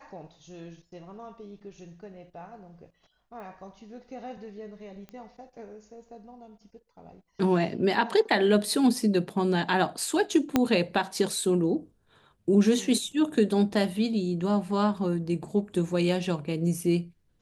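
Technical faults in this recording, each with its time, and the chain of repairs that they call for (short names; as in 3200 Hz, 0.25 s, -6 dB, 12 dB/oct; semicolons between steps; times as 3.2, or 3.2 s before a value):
3.4 pop -34 dBFS
5.09 pop -29 dBFS
10.56 pop -8 dBFS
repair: de-click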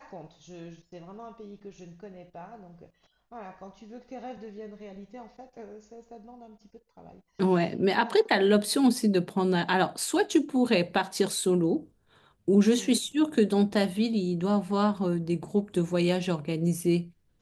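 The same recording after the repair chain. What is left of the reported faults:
10.56 pop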